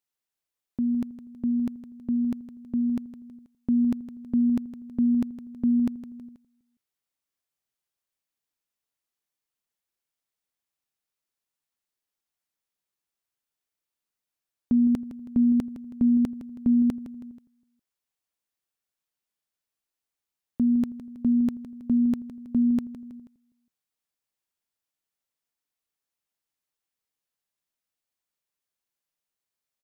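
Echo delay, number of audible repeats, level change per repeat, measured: 0.161 s, 3, -6.5 dB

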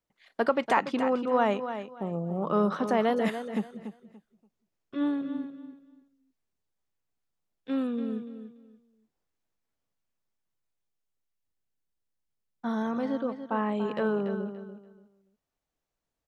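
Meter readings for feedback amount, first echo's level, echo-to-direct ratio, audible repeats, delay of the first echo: 23%, -10.0 dB, -10.0 dB, 2, 0.288 s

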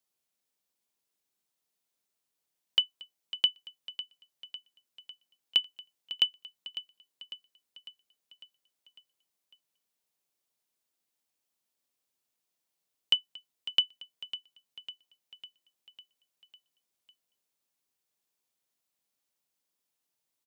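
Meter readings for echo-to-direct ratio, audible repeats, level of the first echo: -12.0 dB, 5, -14.0 dB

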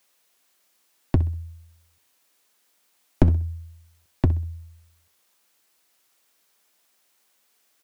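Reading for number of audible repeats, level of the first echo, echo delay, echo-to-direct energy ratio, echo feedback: 2, -16.0 dB, 64 ms, -15.5 dB, 30%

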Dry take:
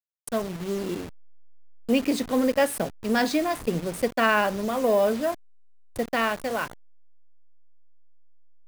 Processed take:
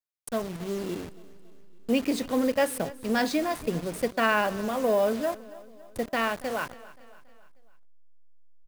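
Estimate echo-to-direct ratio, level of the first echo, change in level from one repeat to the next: -18.0 dB, -19.5 dB, -5.5 dB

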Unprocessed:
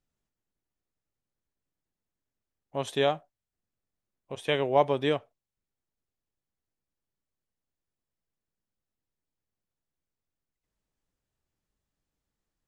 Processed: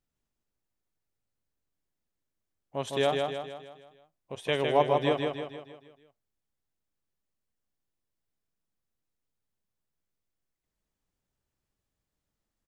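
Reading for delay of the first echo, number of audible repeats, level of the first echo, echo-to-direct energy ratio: 0.157 s, 6, -4.0 dB, -3.0 dB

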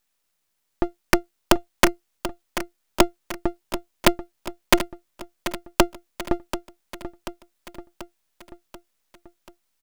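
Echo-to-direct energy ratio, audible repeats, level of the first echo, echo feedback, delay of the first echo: -10.5 dB, 5, -12.0 dB, 56%, 0.736 s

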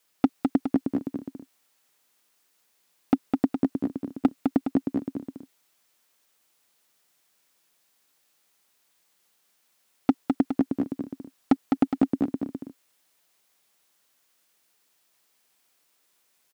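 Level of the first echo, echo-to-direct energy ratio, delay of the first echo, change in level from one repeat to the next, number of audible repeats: -4.0 dB, -3.0 dB, 0.207 s, -5.0 dB, 2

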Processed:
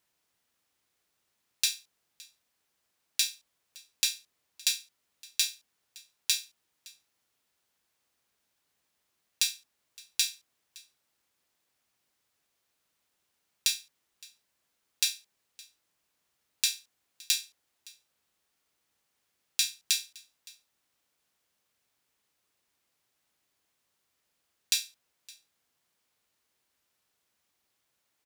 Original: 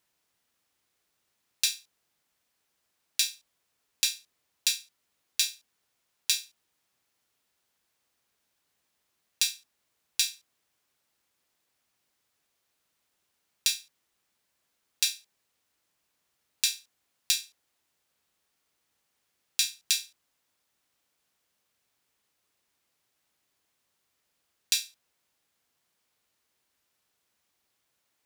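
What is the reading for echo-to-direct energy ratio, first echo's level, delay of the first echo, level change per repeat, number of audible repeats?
-23.5 dB, -23.5 dB, 0.565 s, no steady repeat, 1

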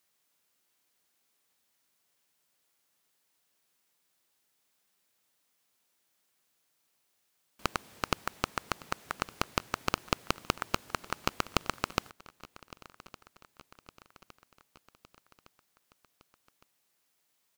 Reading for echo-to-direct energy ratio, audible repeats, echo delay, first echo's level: -19.0 dB, 3, 1.161 s, -20.5 dB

